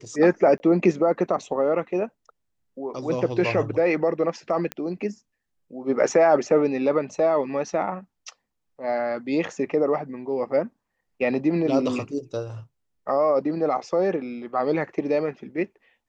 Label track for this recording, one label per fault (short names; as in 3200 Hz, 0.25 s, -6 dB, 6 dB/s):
0.580000	0.600000	gap 20 ms
4.720000	4.720000	pop -14 dBFS